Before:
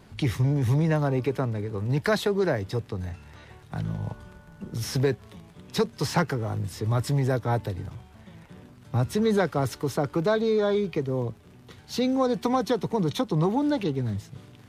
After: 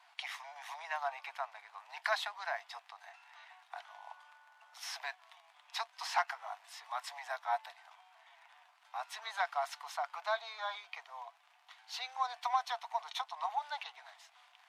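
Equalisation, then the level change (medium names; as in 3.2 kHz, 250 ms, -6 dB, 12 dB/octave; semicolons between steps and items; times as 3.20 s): rippled Chebyshev high-pass 680 Hz, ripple 3 dB; treble shelf 6.6 kHz -12 dB; -2.0 dB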